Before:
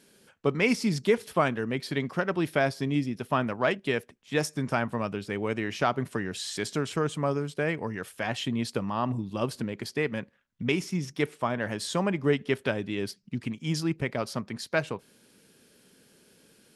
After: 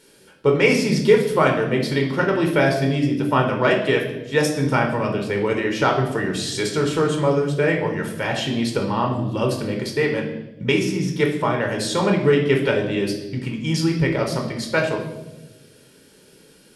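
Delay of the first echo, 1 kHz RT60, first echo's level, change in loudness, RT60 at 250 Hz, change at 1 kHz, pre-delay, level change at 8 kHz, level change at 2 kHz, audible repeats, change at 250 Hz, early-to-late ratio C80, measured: no echo, 0.85 s, no echo, +9.0 dB, 1.5 s, +8.0 dB, 14 ms, +7.0 dB, +8.0 dB, no echo, +8.0 dB, 9.5 dB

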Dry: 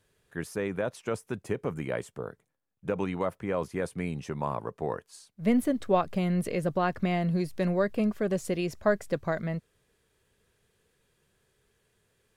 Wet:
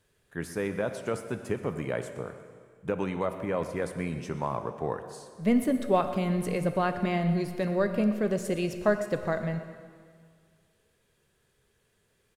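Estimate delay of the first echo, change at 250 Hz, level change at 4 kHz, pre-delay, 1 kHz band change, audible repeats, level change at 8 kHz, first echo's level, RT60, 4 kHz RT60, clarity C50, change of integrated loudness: 123 ms, +0.5 dB, +0.5 dB, 8 ms, +0.5 dB, 1, +0.5 dB, -17.0 dB, 1.9 s, 1.8 s, 9.0 dB, +0.5 dB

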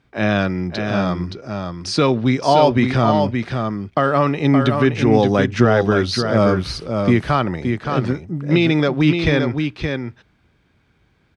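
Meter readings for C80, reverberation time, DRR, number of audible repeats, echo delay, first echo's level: no reverb, no reverb, no reverb, 1, 571 ms, -5.5 dB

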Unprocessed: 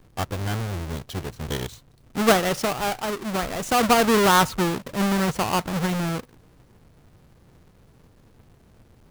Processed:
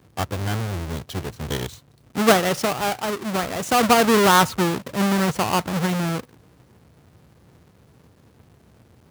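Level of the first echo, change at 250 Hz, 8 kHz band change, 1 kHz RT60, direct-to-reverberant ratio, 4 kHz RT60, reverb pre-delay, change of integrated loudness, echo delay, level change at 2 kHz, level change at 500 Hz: no echo, +2.0 dB, +2.0 dB, no reverb, no reverb, no reverb, no reverb, +2.0 dB, no echo, +2.0 dB, +2.0 dB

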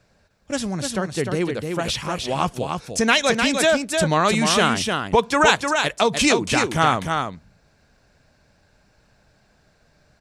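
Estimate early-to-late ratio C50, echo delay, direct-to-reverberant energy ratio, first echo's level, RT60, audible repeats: no reverb, 303 ms, no reverb, -5.0 dB, no reverb, 1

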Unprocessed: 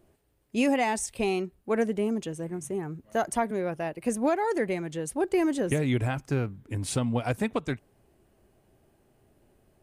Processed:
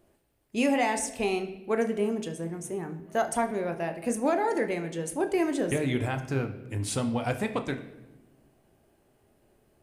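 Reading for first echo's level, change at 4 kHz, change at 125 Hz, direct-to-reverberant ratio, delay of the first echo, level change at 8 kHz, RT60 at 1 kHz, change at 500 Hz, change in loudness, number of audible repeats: no echo, +0.5 dB, -2.5 dB, 7.0 dB, no echo, +0.5 dB, 0.85 s, 0.0 dB, -0.5 dB, no echo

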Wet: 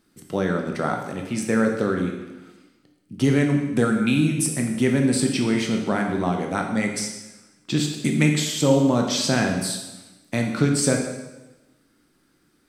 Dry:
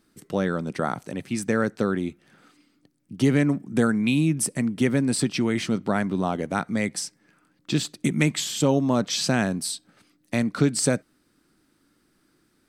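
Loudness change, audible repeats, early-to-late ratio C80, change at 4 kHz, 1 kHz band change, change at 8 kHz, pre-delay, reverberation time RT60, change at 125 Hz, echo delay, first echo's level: +2.0 dB, no echo, 7.0 dB, +2.0 dB, +2.0 dB, +2.0 dB, 7 ms, 1.1 s, +2.5 dB, no echo, no echo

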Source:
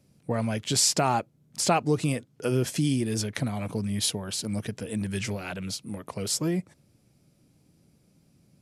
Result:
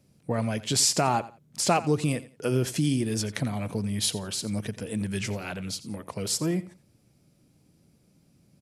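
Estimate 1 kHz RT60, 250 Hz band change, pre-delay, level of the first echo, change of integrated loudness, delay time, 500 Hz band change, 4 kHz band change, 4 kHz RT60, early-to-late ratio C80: no reverb, 0.0 dB, no reverb, -17.0 dB, 0.0 dB, 87 ms, 0.0 dB, 0.0 dB, no reverb, no reverb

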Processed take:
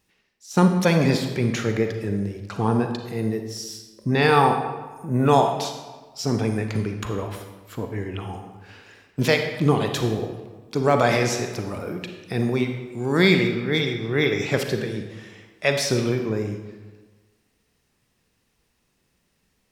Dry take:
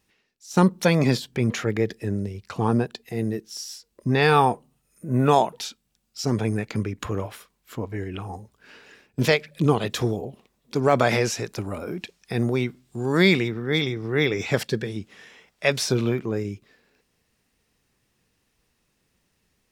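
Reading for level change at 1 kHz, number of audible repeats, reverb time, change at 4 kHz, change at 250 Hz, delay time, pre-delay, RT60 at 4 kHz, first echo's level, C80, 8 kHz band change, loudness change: +1.5 dB, no echo, 1.3 s, +1.0 dB, +1.5 dB, no echo, 36 ms, 0.90 s, no echo, 8.0 dB, +1.0 dB, +1.0 dB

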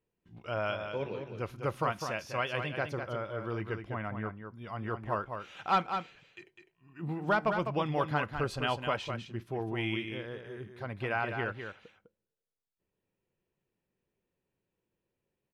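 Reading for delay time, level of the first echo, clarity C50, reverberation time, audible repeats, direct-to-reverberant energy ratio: 203 ms, -7.0 dB, no reverb, no reverb, 1, no reverb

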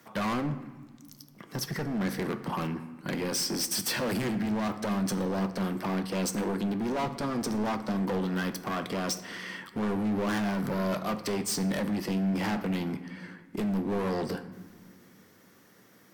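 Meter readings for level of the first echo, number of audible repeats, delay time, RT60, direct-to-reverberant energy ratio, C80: no echo, no echo, no echo, 1.5 s, 9.5 dB, 14.5 dB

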